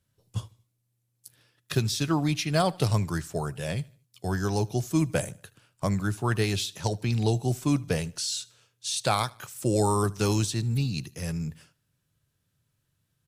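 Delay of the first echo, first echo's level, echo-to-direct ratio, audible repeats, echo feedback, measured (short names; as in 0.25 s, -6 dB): 76 ms, -23.5 dB, -23.0 dB, 2, 40%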